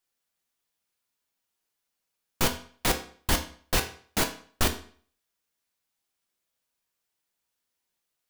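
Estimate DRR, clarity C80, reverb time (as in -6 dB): 4.5 dB, 15.5 dB, 0.50 s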